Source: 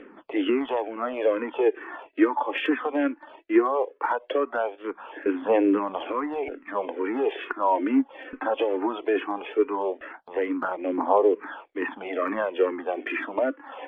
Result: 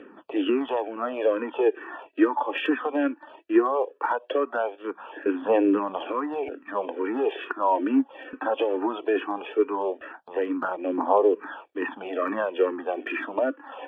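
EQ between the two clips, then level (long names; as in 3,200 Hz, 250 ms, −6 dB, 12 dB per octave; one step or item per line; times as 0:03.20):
high-pass filter 72 Hz
Butterworth band-reject 2,100 Hz, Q 5.9
0.0 dB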